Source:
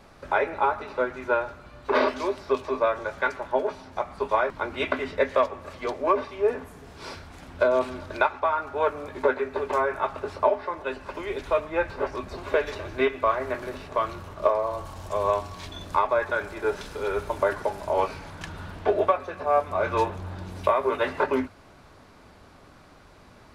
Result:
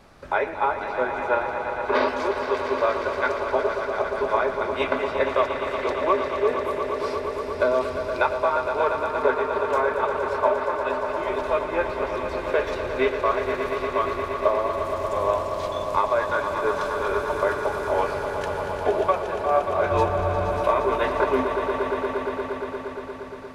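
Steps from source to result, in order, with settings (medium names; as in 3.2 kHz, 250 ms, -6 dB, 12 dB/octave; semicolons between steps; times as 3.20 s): 19.91–20.60 s: bass shelf 130 Hz +11.5 dB; echo with a slow build-up 117 ms, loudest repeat 5, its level -10 dB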